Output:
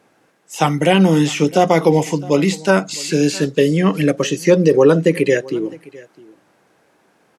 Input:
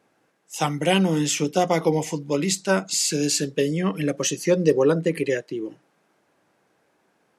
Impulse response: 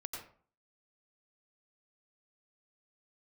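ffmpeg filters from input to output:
-filter_complex "[0:a]acrossover=split=3100[link_01][link_02];[link_02]acompressor=threshold=-36dB:ratio=4:attack=1:release=60[link_03];[link_01][link_03]amix=inputs=2:normalize=0,aecho=1:1:658:0.075,alimiter=level_in=9.5dB:limit=-1dB:release=50:level=0:latency=1,volume=-1dB" -ar 48000 -c:a libopus -b:a 256k

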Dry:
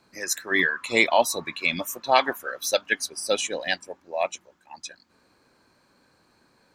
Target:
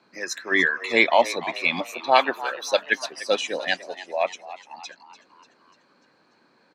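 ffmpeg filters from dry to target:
ffmpeg -i in.wav -filter_complex "[0:a]acrossover=split=150 5300:gain=0.0794 1 0.112[link_01][link_02][link_03];[link_01][link_02][link_03]amix=inputs=3:normalize=0,asplit=6[link_04][link_05][link_06][link_07][link_08][link_09];[link_05]adelay=295,afreqshift=85,volume=-15dB[link_10];[link_06]adelay=590,afreqshift=170,volume=-20.5dB[link_11];[link_07]adelay=885,afreqshift=255,volume=-26dB[link_12];[link_08]adelay=1180,afreqshift=340,volume=-31.5dB[link_13];[link_09]adelay=1475,afreqshift=425,volume=-37.1dB[link_14];[link_04][link_10][link_11][link_12][link_13][link_14]amix=inputs=6:normalize=0,volume=2dB" out.wav

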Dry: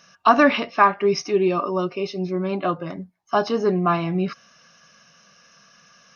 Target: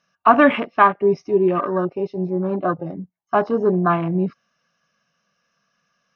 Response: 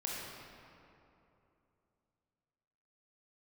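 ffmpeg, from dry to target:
-af "afwtdn=0.0398,aemphasis=mode=reproduction:type=50kf,volume=2.5dB"

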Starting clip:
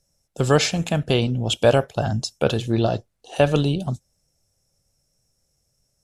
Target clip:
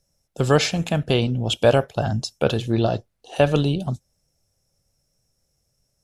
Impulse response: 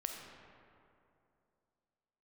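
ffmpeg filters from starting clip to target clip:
-af "equalizer=frequency=7700:width=1.5:gain=-3.5"

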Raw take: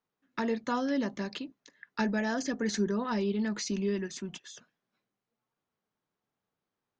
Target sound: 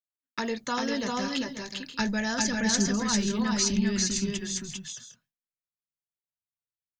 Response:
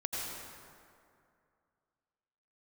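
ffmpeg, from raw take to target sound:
-filter_complex "[0:a]asubboost=boost=12:cutoff=110,crystalizer=i=4:c=0,agate=range=-33dB:threshold=-53dB:ratio=3:detection=peak,asplit=2[link_01][link_02];[link_02]aecho=0:1:396|404|534|560:0.668|0.398|0.251|0.158[link_03];[link_01][link_03]amix=inputs=2:normalize=0"

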